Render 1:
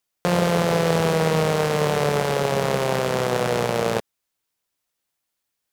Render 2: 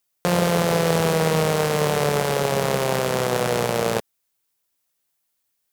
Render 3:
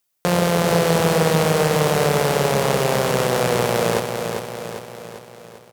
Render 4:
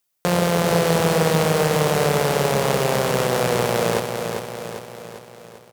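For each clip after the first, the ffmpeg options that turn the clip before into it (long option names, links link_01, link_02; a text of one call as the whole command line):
ffmpeg -i in.wav -af "highshelf=frequency=8100:gain=8" out.wav
ffmpeg -i in.wav -af "aecho=1:1:397|794|1191|1588|1985|2382|2779:0.501|0.271|0.146|0.0789|0.0426|0.023|0.0124,volume=1.5dB" out.wav
ffmpeg -i in.wav -af "acrusher=bits=6:mode=log:mix=0:aa=0.000001,volume=-1dB" out.wav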